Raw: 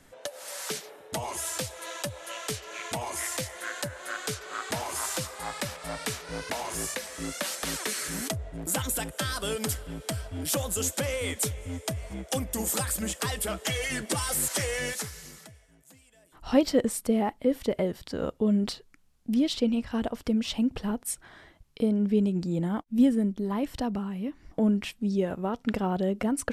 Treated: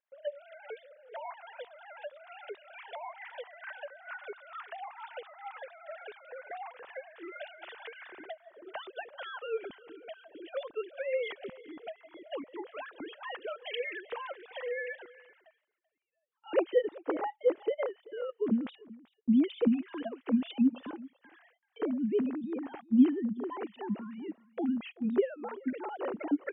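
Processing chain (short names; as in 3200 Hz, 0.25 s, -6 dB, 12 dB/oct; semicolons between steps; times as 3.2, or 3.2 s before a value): sine-wave speech; gate with hold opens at -49 dBFS; echo 0.385 s -21 dB; gain -5 dB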